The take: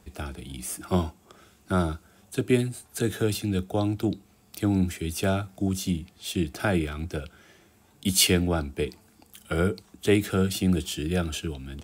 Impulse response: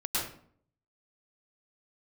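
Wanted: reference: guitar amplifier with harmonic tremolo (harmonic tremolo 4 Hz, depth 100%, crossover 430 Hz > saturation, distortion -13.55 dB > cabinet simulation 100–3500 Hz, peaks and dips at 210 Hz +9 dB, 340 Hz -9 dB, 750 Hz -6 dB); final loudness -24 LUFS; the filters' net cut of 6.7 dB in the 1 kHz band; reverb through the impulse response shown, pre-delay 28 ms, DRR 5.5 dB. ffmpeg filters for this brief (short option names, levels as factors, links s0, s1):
-filter_complex "[0:a]equalizer=f=1000:t=o:g=-7.5,asplit=2[s0][s1];[1:a]atrim=start_sample=2205,adelay=28[s2];[s1][s2]afir=irnorm=-1:irlink=0,volume=0.224[s3];[s0][s3]amix=inputs=2:normalize=0,acrossover=split=430[s4][s5];[s4]aeval=exprs='val(0)*(1-1/2+1/2*cos(2*PI*4*n/s))':c=same[s6];[s5]aeval=exprs='val(0)*(1-1/2-1/2*cos(2*PI*4*n/s))':c=same[s7];[s6][s7]amix=inputs=2:normalize=0,asoftclip=threshold=0.0708,highpass=100,equalizer=f=210:t=q:w=4:g=9,equalizer=f=340:t=q:w=4:g=-9,equalizer=f=750:t=q:w=4:g=-6,lowpass=f=3500:w=0.5412,lowpass=f=3500:w=1.3066,volume=2.82"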